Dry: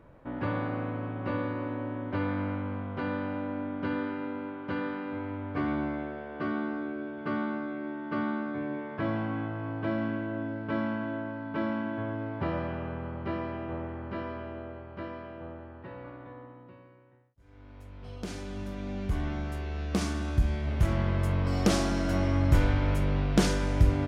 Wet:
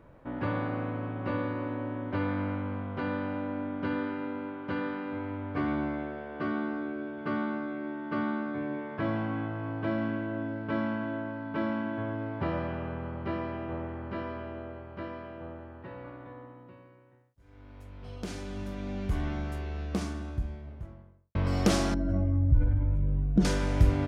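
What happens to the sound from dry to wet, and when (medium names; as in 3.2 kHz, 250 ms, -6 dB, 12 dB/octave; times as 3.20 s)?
19.28–21.35 s: studio fade out
21.94–23.45 s: spectral contrast enhancement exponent 1.9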